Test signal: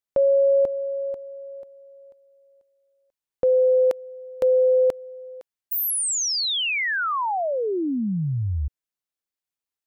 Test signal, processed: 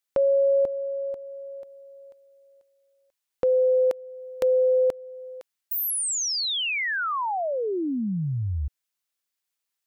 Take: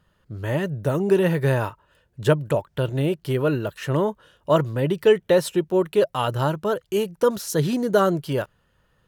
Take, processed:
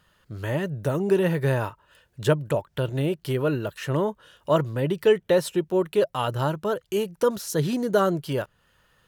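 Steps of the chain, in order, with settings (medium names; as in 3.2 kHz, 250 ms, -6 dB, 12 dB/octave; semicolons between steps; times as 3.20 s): tape noise reduction on one side only encoder only; trim -2.5 dB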